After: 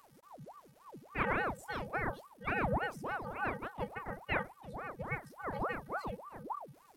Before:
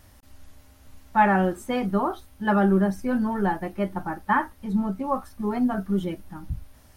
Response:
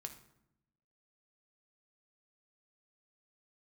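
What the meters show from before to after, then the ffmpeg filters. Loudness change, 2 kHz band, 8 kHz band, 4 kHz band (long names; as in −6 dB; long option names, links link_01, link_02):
−13.5 dB, −6.5 dB, can't be measured, −8.0 dB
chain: -af "afftfilt=real='hypot(re,im)*cos(PI*b)':imag='0':win_size=512:overlap=0.75,aeval=exprs='val(0)*sin(2*PI*660*n/s+660*0.8/3.5*sin(2*PI*3.5*n/s))':channel_layout=same,volume=-4.5dB"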